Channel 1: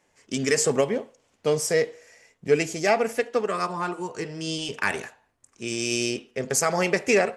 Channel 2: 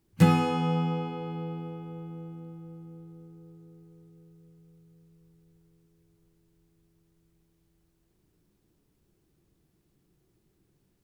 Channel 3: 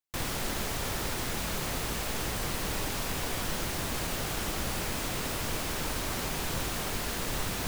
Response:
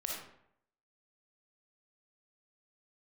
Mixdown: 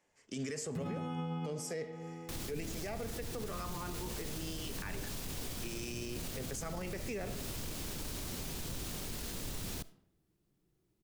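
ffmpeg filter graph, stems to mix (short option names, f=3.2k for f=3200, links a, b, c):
-filter_complex "[0:a]volume=-10.5dB,asplit=3[a][b][c];[b]volume=-14dB[d];[1:a]adelay=550,volume=-11.5dB,asplit=2[e][f];[f]volume=-3.5dB[g];[2:a]acrossover=split=460|3000[h][i][j];[i]acompressor=threshold=-46dB:ratio=6[k];[h][k][j]amix=inputs=3:normalize=0,adelay=2150,volume=-5.5dB,asplit=2[l][m];[m]volume=-19dB[n];[c]apad=whole_len=510815[o];[e][o]sidechaincompress=threshold=-42dB:ratio=8:attack=16:release=268[p];[3:a]atrim=start_sample=2205[q];[d][g][n]amix=inputs=3:normalize=0[r];[r][q]afir=irnorm=-1:irlink=0[s];[a][p][l][s]amix=inputs=4:normalize=0,acrossover=split=310[t][u];[u]acompressor=threshold=-39dB:ratio=3[v];[t][v]amix=inputs=2:normalize=0,alimiter=level_in=7dB:limit=-24dB:level=0:latency=1:release=25,volume=-7dB"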